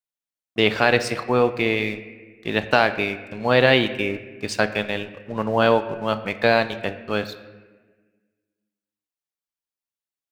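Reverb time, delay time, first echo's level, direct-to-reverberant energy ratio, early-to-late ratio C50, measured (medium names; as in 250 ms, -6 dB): 1.4 s, no echo, no echo, 10.0 dB, 12.5 dB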